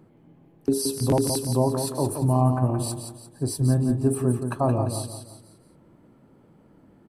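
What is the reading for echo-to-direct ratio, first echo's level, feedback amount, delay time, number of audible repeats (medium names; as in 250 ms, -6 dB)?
-6.5 dB, -7.0 dB, 38%, 173 ms, 4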